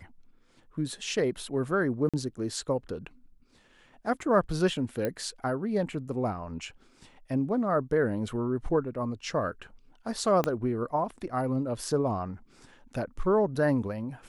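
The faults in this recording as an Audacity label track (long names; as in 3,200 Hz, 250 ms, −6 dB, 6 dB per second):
2.090000	2.140000	drop-out 46 ms
5.050000	5.050000	click −17 dBFS
10.440000	10.440000	click −13 dBFS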